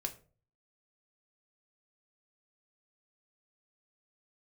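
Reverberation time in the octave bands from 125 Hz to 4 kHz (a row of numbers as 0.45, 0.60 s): 0.70, 0.45, 0.50, 0.35, 0.30, 0.25 s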